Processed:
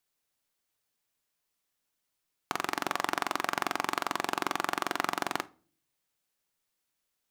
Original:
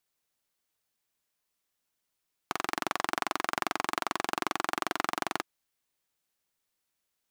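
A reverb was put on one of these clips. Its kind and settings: simulated room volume 320 m³, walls furnished, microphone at 0.3 m

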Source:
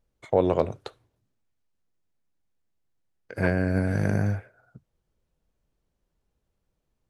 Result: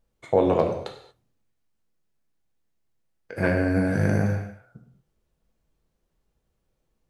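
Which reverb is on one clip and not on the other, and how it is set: gated-style reverb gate 260 ms falling, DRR 2.5 dB; trim +1 dB

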